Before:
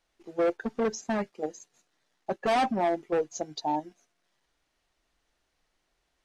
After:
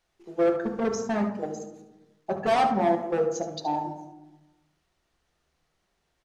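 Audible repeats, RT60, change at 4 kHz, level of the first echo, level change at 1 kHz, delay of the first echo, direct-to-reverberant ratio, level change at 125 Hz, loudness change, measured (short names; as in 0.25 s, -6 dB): 1, 1.1 s, +0.5 dB, -11.5 dB, +3.0 dB, 72 ms, 3.5 dB, +6.5 dB, +3.0 dB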